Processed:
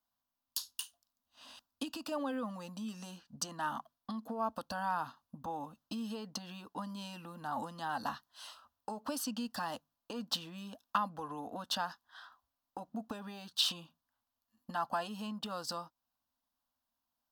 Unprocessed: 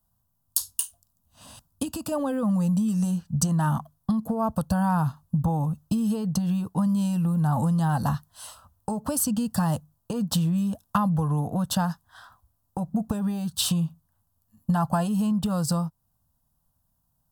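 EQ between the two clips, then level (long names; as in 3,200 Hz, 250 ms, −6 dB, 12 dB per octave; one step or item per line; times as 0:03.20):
high-frequency loss of the air 270 metres
first-order pre-emphasis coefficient 0.97
low shelf with overshoot 200 Hz −7.5 dB, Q 3
+11.0 dB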